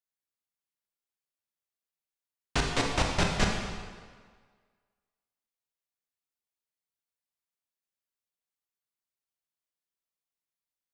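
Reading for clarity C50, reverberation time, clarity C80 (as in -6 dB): 2.5 dB, 1.7 s, 4.5 dB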